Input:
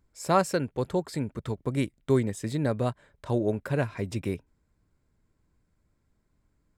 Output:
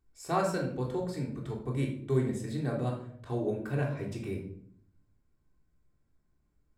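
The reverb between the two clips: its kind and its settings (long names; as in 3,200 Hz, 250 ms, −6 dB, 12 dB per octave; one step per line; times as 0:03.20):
rectangular room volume 990 cubic metres, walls furnished, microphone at 3.5 metres
level −10 dB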